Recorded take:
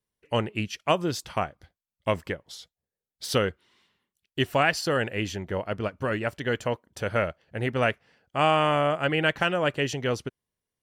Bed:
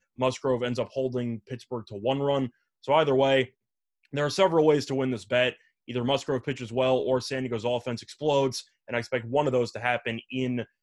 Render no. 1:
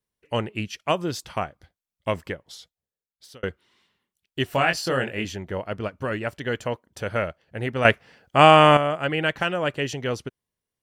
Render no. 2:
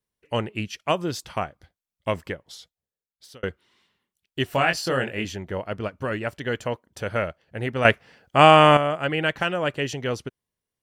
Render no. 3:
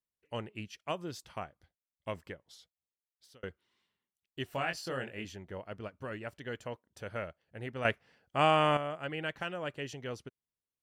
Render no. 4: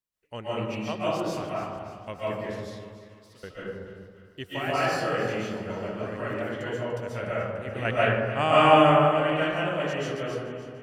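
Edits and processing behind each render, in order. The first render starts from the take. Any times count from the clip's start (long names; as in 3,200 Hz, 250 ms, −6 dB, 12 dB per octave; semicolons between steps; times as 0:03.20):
0:02.56–0:03.43: fade out; 0:04.49–0:05.25: double-tracking delay 23 ms −5 dB; 0:07.85–0:08.77: clip gain +9 dB
no processing that can be heard
level −13 dB
echo with a time of its own for lows and highs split 850 Hz, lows 193 ms, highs 293 ms, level −12.5 dB; comb and all-pass reverb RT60 1.6 s, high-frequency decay 0.3×, pre-delay 100 ms, DRR −8.5 dB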